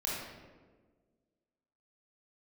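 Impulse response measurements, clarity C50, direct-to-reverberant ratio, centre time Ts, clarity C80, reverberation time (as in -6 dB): -1.5 dB, -6.0 dB, 85 ms, 2.0 dB, 1.5 s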